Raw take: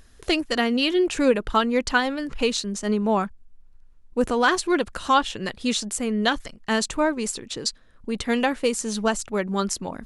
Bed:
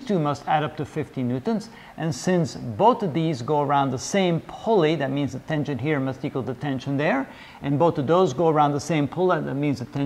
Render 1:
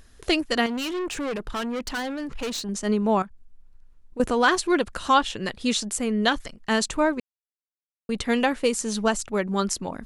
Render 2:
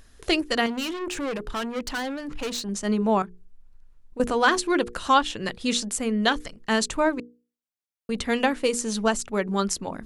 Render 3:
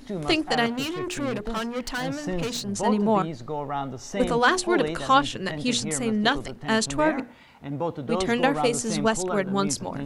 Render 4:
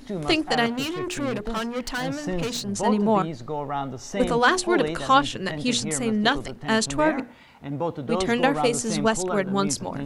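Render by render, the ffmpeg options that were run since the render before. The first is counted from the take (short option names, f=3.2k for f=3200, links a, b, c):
-filter_complex "[0:a]asettb=1/sr,asplit=3[a][b][c];[a]atrim=end=0.664[d];[b]atrim=start=0.66:end=2.69,asetpts=PTS-STARTPTS,afade=t=in:d=0.004:c=qsin,afade=t=out:st=2.026:d=0.004:c=qsin,aeval=exprs='(tanh(20*val(0)+0.15)-tanh(0.15))/20':c=same[e];[c]atrim=start=2.686[f];[d][e]acrossfade=d=0.004:c1=hsin:c2=qsin[g];[g][f]acrossfade=d=0.004:c1=qsin:c2=hsin,asettb=1/sr,asplit=3[h][i][j];[h]atrim=end=3.224[k];[i]atrim=start=3.22:end=4.2,asetpts=PTS-STARTPTS,afade=t=in:d=0.004:c=qsin,afade=t=out:st=0.976:d=0.004:c=qsin,acompressor=threshold=-39dB:ratio=3:attack=3.2:release=140:knee=1:detection=peak[l];[j]atrim=start=4.196[m];[k][l]acrossfade=d=0.004:c1=hsin:c2=qsin[n];[n][m]acrossfade=d=0.004:c1=qsin:c2=hsin,asplit=3[o][p][q];[o]atrim=end=7.2,asetpts=PTS-STARTPTS,afade=t=out:st=7.196:d=0.004:c=hsin[r];[p]atrim=start=7.2:end=8.09,asetpts=PTS-STARTPTS,volume=0[s];[q]atrim=start=8.09,asetpts=PTS-STARTPTS,afade=t=in:d=0.004:c=hsin[t];[r][s][t]concat=n=3:v=0:a=1"
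-af "bandreject=f=60:t=h:w=6,bandreject=f=120:t=h:w=6,bandreject=f=180:t=h:w=6,bandreject=f=240:t=h:w=6,bandreject=f=300:t=h:w=6,bandreject=f=360:t=h:w=6,bandreject=f=420:t=h:w=6,bandreject=f=480:t=h:w=6"
-filter_complex "[1:a]volume=-9dB[a];[0:a][a]amix=inputs=2:normalize=0"
-af "volume=1dB"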